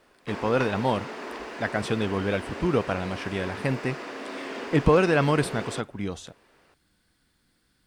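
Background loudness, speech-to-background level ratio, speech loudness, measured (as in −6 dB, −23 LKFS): −37.0 LKFS, 10.5 dB, −26.5 LKFS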